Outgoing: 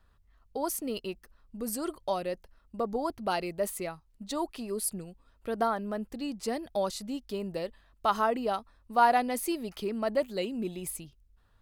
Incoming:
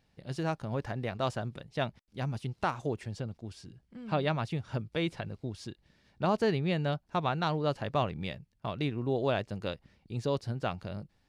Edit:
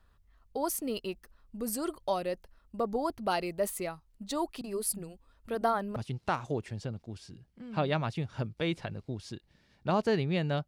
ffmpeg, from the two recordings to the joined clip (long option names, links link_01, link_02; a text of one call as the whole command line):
ffmpeg -i cue0.wav -i cue1.wav -filter_complex "[0:a]asettb=1/sr,asplit=3[link_01][link_02][link_03];[link_01]atrim=end=4.614[link_04];[link_02]atrim=start=4.61:end=5.96,asetpts=PTS-STARTPTS,afade=type=in:duration=0.004:curve=qsin,afade=type=out:start_time=1.346:duration=0.004:curve=qsin,acrossover=split=190[link_05][link_06];[link_06]adelay=30[link_07];[link_05][link_07]amix=inputs=2:normalize=0,atrim=end_sample=59535[link_08];[link_03]atrim=start=5.956[link_09];[link_04][link_08]acrossfade=duration=0.004:curve1=hsin:curve2=qsin[link_10];[link_10][link_09]acrossfade=duration=0.004:curve1=qsin:curve2=hsin,apad=whole_dur=10.67,atrim=end=10.67,atrim=end=5.962[link_11];[1:a]atrim=start=2.308:end=7.02[link_12];[link_11][link_12]acrossfade=duration=0.004:curve1=hsin:curve2=hsin" out.wav